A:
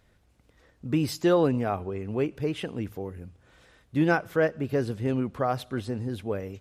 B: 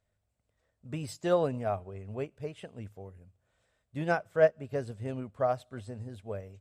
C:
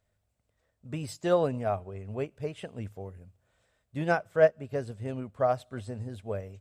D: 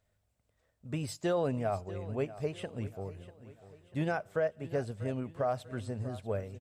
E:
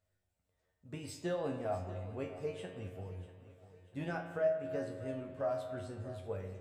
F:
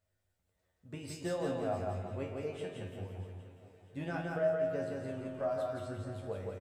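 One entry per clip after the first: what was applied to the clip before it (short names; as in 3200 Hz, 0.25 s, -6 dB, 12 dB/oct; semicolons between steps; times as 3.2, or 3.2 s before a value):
thirty-one-band EQ 100 Hz +7 dB, 315 Hz -8 dB, 630 Hz +9 dB, 8000 Hz +10 dB, 12500 Hz -5 dB; upward expander 1.5:1, over -44 dBFS; gain -3 dB
vocal rider within 5 dB 2 s
limiter -22.5 dBFS, peak gain reduction 12 dB; feedback echo 0.643 s, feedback 43%, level -16 dB
resonator 91 Hz, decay 0.3 s, harmonics all, mix 90%; on a send at -6.5 dB: reverb RT60 1.7 s, pre-delay 47 ms; on the sum: gain +2.5 dB
feedback echo 0.171 s, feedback 38%, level -3 dB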